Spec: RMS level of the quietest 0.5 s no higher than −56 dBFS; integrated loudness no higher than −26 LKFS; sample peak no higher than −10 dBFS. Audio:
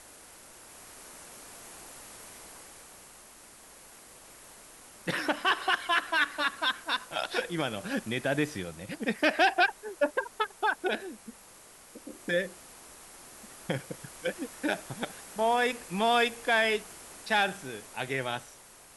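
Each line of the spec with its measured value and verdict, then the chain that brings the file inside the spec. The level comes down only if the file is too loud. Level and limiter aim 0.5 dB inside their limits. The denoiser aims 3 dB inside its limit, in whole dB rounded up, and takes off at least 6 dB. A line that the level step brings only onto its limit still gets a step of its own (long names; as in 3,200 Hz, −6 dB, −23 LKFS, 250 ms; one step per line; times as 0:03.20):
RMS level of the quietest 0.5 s −53 dBFS: out of spec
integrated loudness −29.5 LKFS: in spec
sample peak −12.5 dBFS: in spec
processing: broadband denoise 6 dB, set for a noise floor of −53 dBFS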